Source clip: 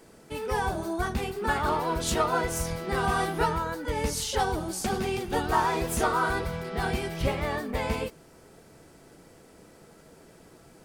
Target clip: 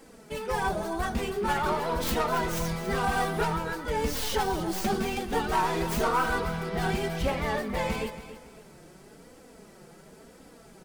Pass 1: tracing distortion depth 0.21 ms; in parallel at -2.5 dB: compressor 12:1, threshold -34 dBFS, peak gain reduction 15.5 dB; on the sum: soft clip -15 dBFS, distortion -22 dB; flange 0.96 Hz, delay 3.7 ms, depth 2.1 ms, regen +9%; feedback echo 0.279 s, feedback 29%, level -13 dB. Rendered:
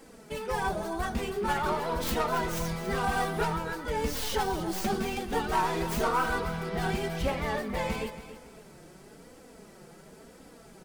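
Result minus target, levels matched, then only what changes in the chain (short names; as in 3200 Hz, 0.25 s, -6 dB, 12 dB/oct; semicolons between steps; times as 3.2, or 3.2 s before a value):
compressor: peak gain reduction +8 dB
change: compressor 12:1, threshold -25 dBFS, peak gain reduction 7.5 dB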